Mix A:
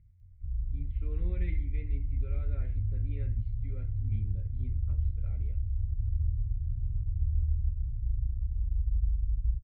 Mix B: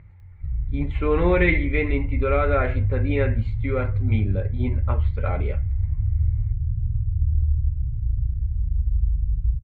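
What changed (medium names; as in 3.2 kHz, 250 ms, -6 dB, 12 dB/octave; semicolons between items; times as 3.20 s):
speech +3.5 dB; master: remove amplifier tone stack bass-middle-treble 10-0-1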